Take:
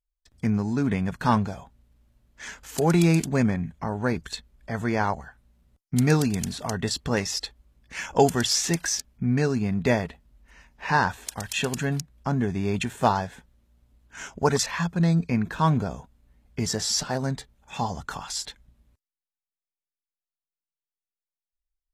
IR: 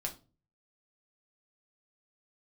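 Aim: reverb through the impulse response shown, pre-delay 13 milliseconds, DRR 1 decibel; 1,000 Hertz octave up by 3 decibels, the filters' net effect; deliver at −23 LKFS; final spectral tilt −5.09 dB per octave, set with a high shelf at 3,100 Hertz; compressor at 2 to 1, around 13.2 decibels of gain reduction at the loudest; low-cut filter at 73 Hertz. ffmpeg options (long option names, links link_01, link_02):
-filter_complex "[0:a]highpass=73,equalizer=frequency=1000:width_type=o:gain=4,highshelf=frequency=3100:gain=-4,acompressor=threshold=-38dB:ratio=2,asplit=2[link_01][link_02];[1:a]atrim=start_sample=2205,adelay=13[link_03];[link_02][link_03]afir=irnorm=-1:irlink=0,volume=-1.5dB[link_04];[link_01][link_04]amix=inputs=2:normalize=0,volume=10dB"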